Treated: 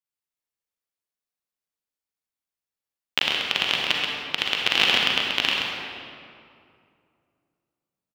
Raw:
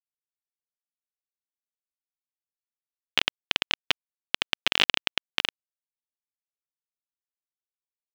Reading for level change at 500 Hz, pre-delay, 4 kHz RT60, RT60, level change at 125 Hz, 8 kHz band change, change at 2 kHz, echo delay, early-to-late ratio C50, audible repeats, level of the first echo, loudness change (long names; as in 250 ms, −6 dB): +5.0 dB, 35 ms, 1.5 s, 2.4 s, +6.0 dB, +3.0 dB, +4.5 dB, 131 ms, −2.0 dB, 1, −5.5 dB, +4.0 dB